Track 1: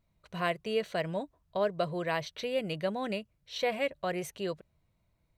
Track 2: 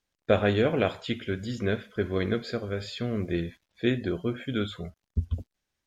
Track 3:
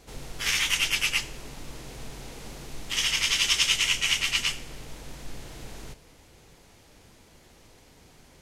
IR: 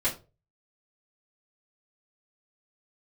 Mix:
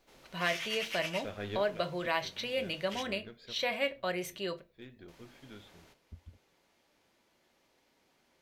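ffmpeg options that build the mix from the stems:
-filter_complex "[0:a]tiltshelf=f=1.3k:g=-5.5,volume=-1dB,asplit=3[a][b][c];[b]volume=-14.5dB[d];[1:a]highshelf=f=2.1k:g=7,aeval=exprs='0.316*(cos(1*acos(clip(val(0)/0.316,-1,1)))-cos(1*PI/2))+0.0141*(cos(8*acos(clip(val(0)/0.316,-1,1)))-cos(8*PI/2))':c=same,adelay=950,volume=-10.5dB,afade=t=out:st=3.11:d=0.71:silence=0.237137[e];[2:a]highpass=f=390:p=1,volume=-13.5dB,asplit=3[f][g][h];[f]atrim=end=3.03,asetpts=PTS-STARTPTS,afade=t=out:st=3.026:d=0.004:c=hsin[i];[g]atrim=start=3.03:end=5.08,asetpts=PTS-STARTPTS,volume=0[j];[h]atrim=start=5.08,asetpts=PTS-STARTPTS,afade=t=in:d=0.004:c=hsin[k];[i][j][k]concat=n=3:v=0:a=1,asplit=2[l][m];[m]volume=-17.5dB[n];[c]apad=whole_len=300528[o];[e][o]sidechaincompress=threshold=-45dB:ratio=8:attack=29:release=598[p];[3:a]atrim=start_sample=2205[q];[d][n]amix=inputs=2:normalize=0[r];[r][q]afir=irnorm=-1:irlink=0[s];[a][p][l][s]amix=inputs=4:normalize=0,equalizer=f=8.6k:t=o:w=1.2:g=-8"

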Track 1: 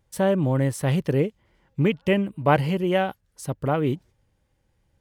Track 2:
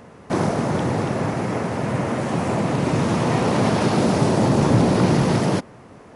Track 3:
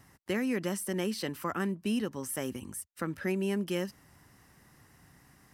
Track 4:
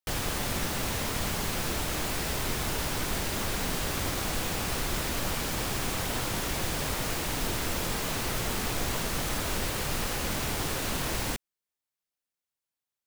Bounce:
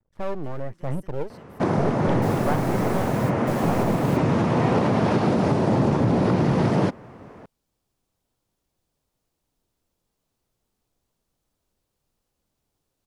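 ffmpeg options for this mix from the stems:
-filter_complex "[0:a]lowpass=1.3k,aeval=exprs='max(val(0),0)':c=same,aphaser=in_gain=1:out_gain=1:delay=2.8:decay=0.4:speed=1.1:type=sinusoidal,volume=-5dB,asplit=2[a][b];[1:a]aemphasis=mode=reproduction:type=75kf,adelay=1300,volume=1dB[c];[2:a]acompressor=threshold=-35dB:ratio=6,adelay=150,volume=-16dB[d];[3:a]equalizer=f=1.9k:w=0.93:g=-8,adelay=2150,volume=-8dB[e];[b]apad=whole_len=671163[f];[e][f]sidechaingate=range=-38dB:threshold=-57dB:ratio=16:detection=peak[g];[a][c][d][g]amix=inputs=4:normalize=0,alimiter=limit=-11dB:level=0:latency=1:release=201"

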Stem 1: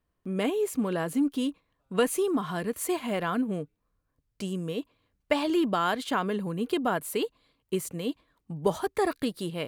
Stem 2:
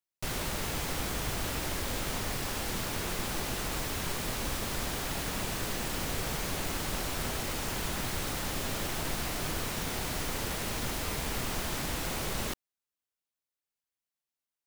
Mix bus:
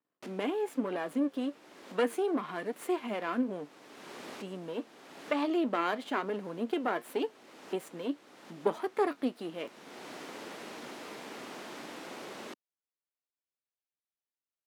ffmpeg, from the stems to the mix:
-filter_complex "[0:a]aeval=exprs='if(lt(val(0),0),0.251*val(0),val(0))':c=same,bass=f=250:g=11,treble=f=4k:g=-10,flanger=delay=6.7:depth=3:regen=68:speed=1.1:shape=triangular,volume=3dB,asplit=2[a][b];[1:a]aemphasis=mode=reproduction:type=bsi,volume=-7dB[c];[b]apad=whole_len=646925[d];[c][d]sidechaincompress=threshold=-37dB:ratio=8:attack=5.2:release=534[e];[a][e]amix=inputs=2:normalize=0,highpass=f=270:w=0.5412,highpass=f=270:w=1.3066"

